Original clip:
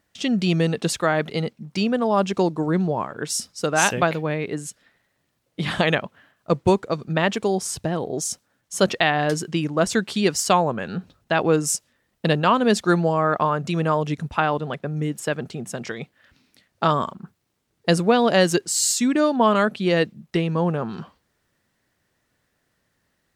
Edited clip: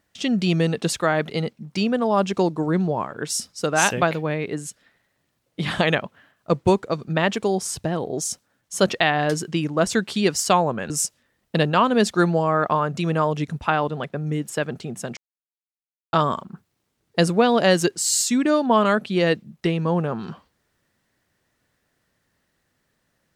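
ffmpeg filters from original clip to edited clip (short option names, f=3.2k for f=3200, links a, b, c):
-filter_complex "[0:a]asplit=4[a][b][c][d];[a]atrim=end=10.902[e];[b]atrim=start=11.598:end=15.87,asetpts=PTS-STARTPTS,afade=t=out:st=4.268:d=0.004:c=hsin[f];[c]atrim=start=15.87:end=16.83,asetpts=PTS-STARTPTS,volume=0[g];[d]atrim=start=16.83,asetpts=PTS-STARTPTS,afade=t=in:d=0.004:c=hsin[h];[f][g][h]concat=n=3:v=0:a=1[i];[e][i]acrossfade=d=0.004:c1=hsin:c2=hsin"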